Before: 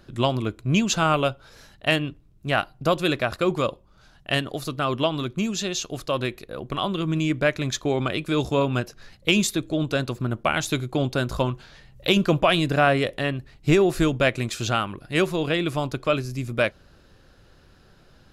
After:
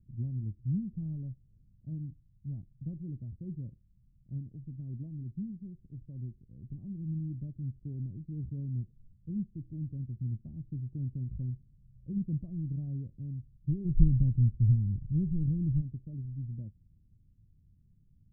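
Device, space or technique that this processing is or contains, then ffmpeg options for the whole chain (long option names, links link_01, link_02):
the neighbour's flat through the wall: -filter_complex "[0:a]asplit=3[link_01][link_02][link_03];[link_01]afade=type=out:start_time=13.84:duration=0.02[link_04];[link_02]aemphasis=mode=reproduction:type=riaa,afade=type=in:start_time=13.84:duration=0.02,afade=type=out:start_time=15.8:duration=0.02[link_05];[link_03]afade=type=in:start_time=15.8:duration=0.02[link_06];[link_04][link_05][link_06]amix=inputs=3:normalize=0,lowpass=frequency=200:width=0.5412,lowpass=frequency=200:width=1.3066,equalizer=frequency=99:width_type=o:width=0.64:gain=5,volume=-8.5dB"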